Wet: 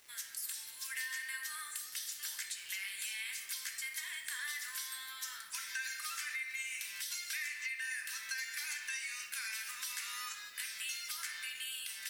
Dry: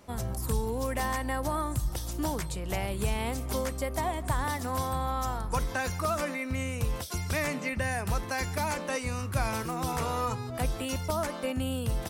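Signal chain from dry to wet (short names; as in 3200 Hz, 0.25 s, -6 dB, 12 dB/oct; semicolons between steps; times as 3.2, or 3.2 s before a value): elliptic high-pass 1700 Hz, stop band 80 dB; reverb RT60 1.2 s, pre-delay 5 ms, DRR 2.5 dB; bit-crush 10-bit; compressor, threshold -38 dBFS, peak gain reduction 9 dB; gain +1 dB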